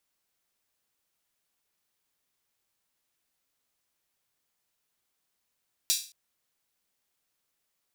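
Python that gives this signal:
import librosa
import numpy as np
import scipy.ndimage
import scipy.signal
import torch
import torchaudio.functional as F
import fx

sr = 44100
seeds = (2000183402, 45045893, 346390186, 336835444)

y = fx.drum_hat_open(sr, length_s=0.22, from_hz=4200.0, decay_s=0.37)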